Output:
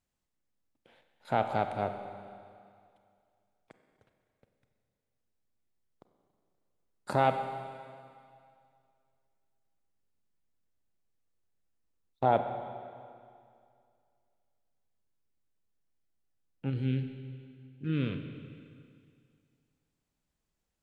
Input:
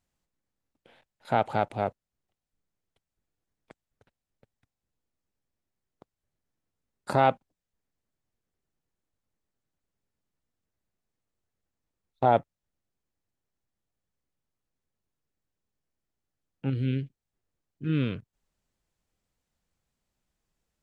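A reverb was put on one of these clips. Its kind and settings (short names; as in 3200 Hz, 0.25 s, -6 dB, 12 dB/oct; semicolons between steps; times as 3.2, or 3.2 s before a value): Schroeder reverb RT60 2.3 s, combs from 31 ms, DRR 7 dB; gain -4 dB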